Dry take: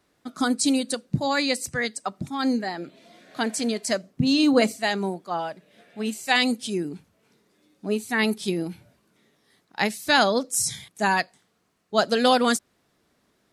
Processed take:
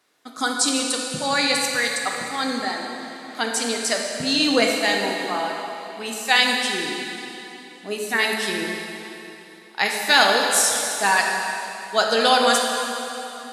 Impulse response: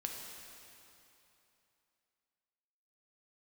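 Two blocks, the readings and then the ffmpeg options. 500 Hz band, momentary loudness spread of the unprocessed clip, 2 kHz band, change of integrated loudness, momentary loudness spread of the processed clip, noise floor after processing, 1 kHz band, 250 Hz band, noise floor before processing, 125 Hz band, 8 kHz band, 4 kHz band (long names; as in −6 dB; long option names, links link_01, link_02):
+2.0 dB, 14 LU, +6.5 dB, +3.5 dB, 16 LU, −44 dBFS, +4.5 dB, −3.5 dB, −69 dBFS, −7.5 dB, +7.0 dB, +7.0 dB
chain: -filter_complex "[0:a]highpass=frequency=860:poles=1[link_01];[1:a]atrim=start_sample=2205,asetrate=40131,aresample=44100[link_02];[link_01][link_02]afir=irnorm=-1:irlink=0,volume=6.5dB"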